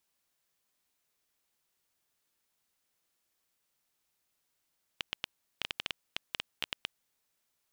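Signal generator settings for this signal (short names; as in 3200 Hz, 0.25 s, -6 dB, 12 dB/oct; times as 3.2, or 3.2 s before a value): random clicks 7.7/s -14.5 dBFS 2.06 s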